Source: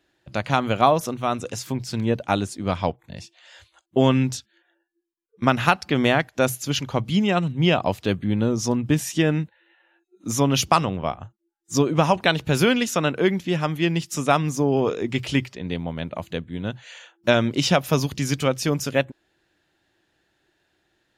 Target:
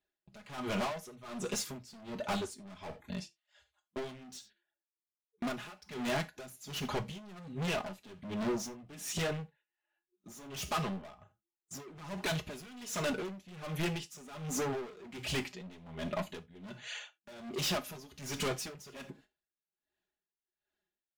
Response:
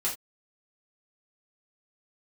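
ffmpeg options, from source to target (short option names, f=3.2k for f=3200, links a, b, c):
-filter_complex "[0:a]agate=range=-20dB:threshold=-47dB:ratio=16:detection=peak,aecho=1:1:4.8:0.65,acompressor=threshold=-18dB:ratio=6,flanger=delay=0.8:depth=5.4:regen=4:speed=1.7:shape=triangular,volume=32.5dB,asoftclip=hard,volume=-32.5dB,asplit=2[a][b];[1:a]atrim=start_sample=2205[c];[b][c]afir=irnorm=-1:irlink=0,volume=-12dB[d];[a][d]amix=inputs=2:normalize=0,aeval=exprs='val(0)*pow(10,-19*(0.5-0.5*cos(2*PI*1.3*n/s))/20)':c=same"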